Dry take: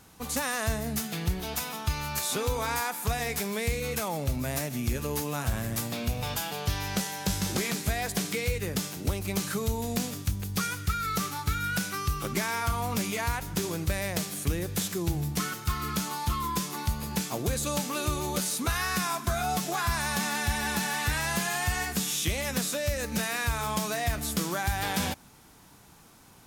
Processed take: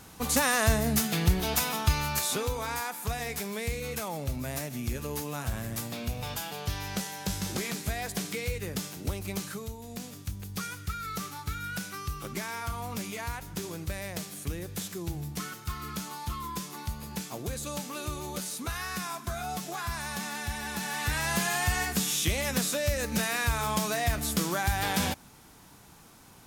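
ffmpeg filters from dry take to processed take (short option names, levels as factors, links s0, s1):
-af "volume=8.41,afade=t=out:st=1.8:d=0.75:silence=0.375837,afade=t=out:st=9.29:d=0.49:silence=0.354813,afade=t=in:st=9.78:d=0.65:silence=0.473151,afade=t=in:st=20.72:d=0.69:silence=0.446684"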